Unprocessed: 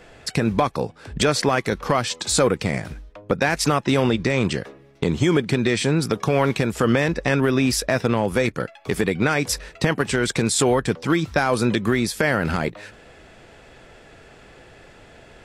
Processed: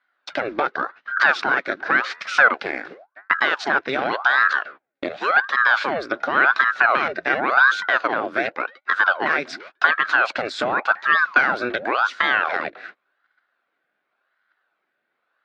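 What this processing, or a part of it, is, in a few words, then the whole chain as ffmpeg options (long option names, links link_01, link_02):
voice changer toy: -filter_complex "[0:a]asettb=1/sr,asplit=3[link_01][link_02][link_03];[link_01]atrim=end=5.084[link_04];[link_02]atrim=start=5.08:end=5.57,asetpts=PTS-STARTPTS,afade=type=in:duration=0.004:curve=qsin,afade=type=out:start_time=0.486:duration=0.004:curve=qsin,highpass=270[link_05];[link_03]atrim=start=5.566[link_06];[link_04][link_05]acrossfade=duration=0.004:curve1=hsin:curve2=qsin[link_07];[link_07][link_06]acrossfade=duration=0.004:curve1=qsin:curve2=hsin,aeval=exprs='val(0)*sin(2*PI*810*n/s+810*0.85/0.9*sin(2*PI*0.9*n/s))':channel_layout=same,highpass=410,equalizer=frequency=460:width_type=q:width=4:gain=-4,equalizer=frequency=930:width_type=q:width=4:gain=-7,equalizer=frequency=1500:width_type=q:width=4:gain=10,equalizer=frequency=3000:width_type=q:width=4:gain=-6,lowpass=frequency=4000:width=0.5412,lowpass=frequency=4000:width=1.3066,agate=range=-27dB:threshold=-41dB:ratio=16:detection=peak,asettb=1/sr,asplit=3[link_08][link_09][link_10];[link_08]atrim=end=0.604[link_11];[link_09]atrim=start=0.6:end=1.29,asetpts=PTS-STARTPTS,afade=type=in:duration=0.004:curve=qsin,afade=type=out:start_time=0.686:duration=0.004:curve=qsin,lowpass=7500[link_12];[link_10]atrim=start=1.286[link_13];[link_11][link_12]acrossfade=duration=0.004:curve1=hsin:curve2=qsin[link_14];[link_14][link_13]acrossfade=duration=0.004:curve1=qsin:curve2=hsin,volume=3dB"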